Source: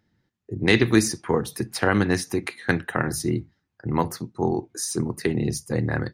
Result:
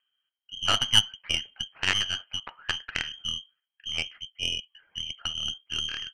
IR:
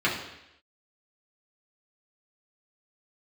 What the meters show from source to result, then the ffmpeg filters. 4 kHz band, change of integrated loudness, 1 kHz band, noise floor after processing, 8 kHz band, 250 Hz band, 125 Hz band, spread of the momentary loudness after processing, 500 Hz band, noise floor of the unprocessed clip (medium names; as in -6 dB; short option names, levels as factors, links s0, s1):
+10.5 dB, -3.5 dB, -8.0 dB, under -85 dBFS, -5.0 dB, -24.0 dB, -17.0 dB, 14 LU, -21.5 dB, -77 dBFS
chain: -af "lowpass=f=2800:t=q:w=0.5098,lowpass=f=2800:t=q:w=0.6013,lowpass=f=2800:t=q:w=0.9,lowpass=f=2800:t=q:w=2.563,afreqshift=-3300,tremolo=f=3.1:d=0.3,aeval=exprs='0.562*(cos(1*acos(clip(val(0)/0.562,-1,1)))-cos(1*PI/2))+0.0891*(cos(2*acos(clip(val(0)/0.562,-1,1)))-cos(2*PI/2))+0.112*(cos(3*acos(clip(val(0)/0.562,-1,1)))-cos(3*PI/2))+0.0141*(cos(6*acos(clip(val(0)/0.562,-1,1)))-cos(6*PI/2))':c=same"